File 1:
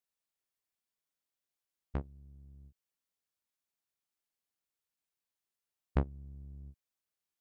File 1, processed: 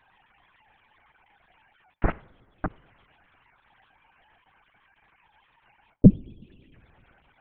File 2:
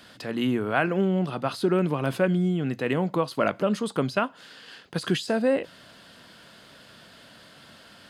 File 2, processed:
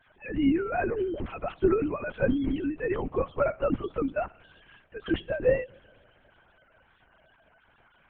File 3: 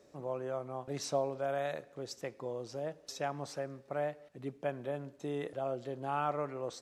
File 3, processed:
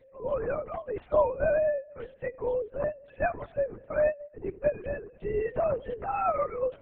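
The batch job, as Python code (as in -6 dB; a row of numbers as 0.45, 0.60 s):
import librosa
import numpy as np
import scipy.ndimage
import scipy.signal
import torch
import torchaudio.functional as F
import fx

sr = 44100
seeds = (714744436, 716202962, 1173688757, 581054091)

y = fx.sine_speech(x, sr)
y = fx.peak_eq(y, sr, hz=200.0, db=5.5, octaves=0.87)
y = fx.env_lowpass(y, sr, base_hz=2200.0, full_db=-22.5)
y = fx.rev_double_slope(y, sr, seeds[0], early_s=0.53, late_s=2.9, knee_db=-16, drr_db=18.5)
y = fx.lpc_vocoder(y, sr, seeds[1], excitation='whisper', order=8)
y = y * 10.0 ** (-30 / 20.0) / np.sqrt(np.mean(np.square(y)))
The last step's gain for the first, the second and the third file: +12.5, -3.5, +8.5 dB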